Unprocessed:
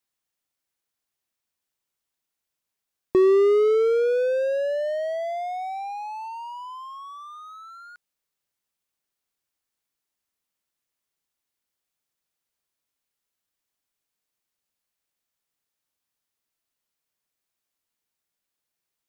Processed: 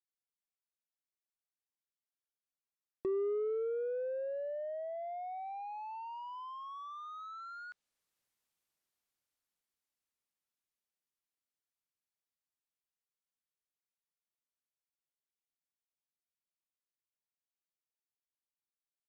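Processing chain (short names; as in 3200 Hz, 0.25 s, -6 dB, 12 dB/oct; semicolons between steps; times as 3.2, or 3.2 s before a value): Doppler pass-by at 8.1, 11 m/s, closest 10 m; treble ducked by the level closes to 1100 Hz, closed at -35.5 dBFS; gain -1.5 dB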